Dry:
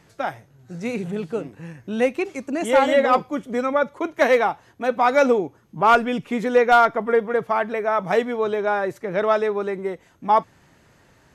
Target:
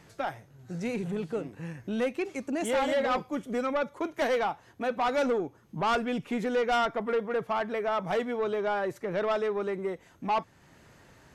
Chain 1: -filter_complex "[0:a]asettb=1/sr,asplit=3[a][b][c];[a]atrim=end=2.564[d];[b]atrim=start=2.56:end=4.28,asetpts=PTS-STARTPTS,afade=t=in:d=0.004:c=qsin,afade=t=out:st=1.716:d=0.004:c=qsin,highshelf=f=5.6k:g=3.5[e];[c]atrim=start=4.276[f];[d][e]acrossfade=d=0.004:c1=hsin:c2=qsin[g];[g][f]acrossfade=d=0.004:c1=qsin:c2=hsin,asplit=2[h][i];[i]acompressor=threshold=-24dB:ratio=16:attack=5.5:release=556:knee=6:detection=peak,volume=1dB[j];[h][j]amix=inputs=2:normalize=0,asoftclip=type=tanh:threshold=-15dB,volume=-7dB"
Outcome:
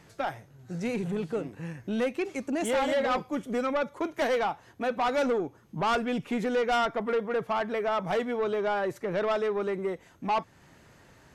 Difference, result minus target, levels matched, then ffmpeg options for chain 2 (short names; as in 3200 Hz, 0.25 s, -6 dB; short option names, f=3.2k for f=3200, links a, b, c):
compressor: peak gain reduction -6 dB
-filter_complex "[0:a]asettb=1/sr,asplit=3[a][b][c];[a]atrim=end=2.564[d];[b]atrim=start=2.56:end=4.28,asetpts=PTS-STARTPTS,afade=t=in:d=0.004:c=qsin,afade=t=out:st=1.716:d=0.004:c=qsin,highshelf=f=5.6k:g=3.5[e];[c]atrim=start=4.276[f];[d][e]acrossfade=d=0.004:c1=hsin:c2=qsin[g];[g][f]acrossfade=d=0.004:c1=qsin:c2=hsin,asplit=2[h][i];[i]acompressor=threshold=-30.5dB:ratio=16:attack=5.5:release=556:knee=6:detection=peak,volume=1dB[j];[h][j]amix=inputs=2:normalize=0,asoftclip=type=tanh:threshold=-15dB,volume=-7dB"